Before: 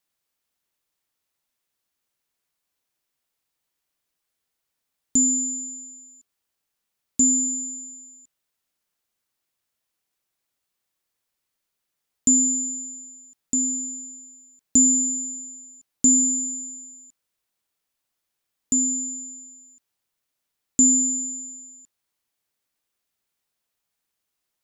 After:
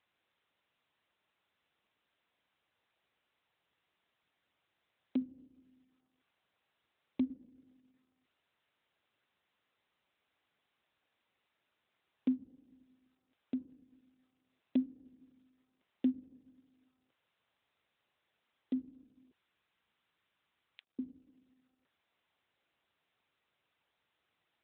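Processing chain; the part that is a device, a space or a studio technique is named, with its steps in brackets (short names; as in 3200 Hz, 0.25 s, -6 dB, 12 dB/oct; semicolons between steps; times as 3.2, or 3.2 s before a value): 19.31–20.99 steep high-pass 890 Hz 48 dB/oct; reverb removal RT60 0.6 s; telephone (BPF 370–3600 Hz; gain +1 dB; AMR-NB 12.2 kbps 8000 Hz)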